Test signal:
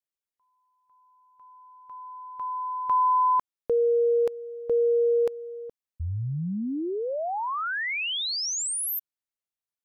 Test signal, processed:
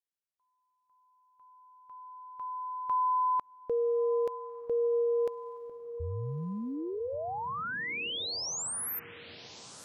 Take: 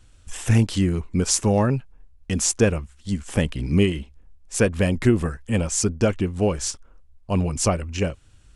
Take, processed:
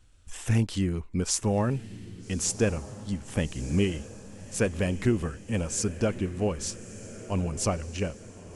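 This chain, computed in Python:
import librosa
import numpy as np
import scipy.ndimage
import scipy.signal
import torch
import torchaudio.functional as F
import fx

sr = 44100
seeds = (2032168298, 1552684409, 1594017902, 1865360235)

y = fx.echo_diffused(x, sr, ms=1248, feedback_pct=54, wet_db=-15.0)
y = y * librosa.db_to_amplitude(-6.5)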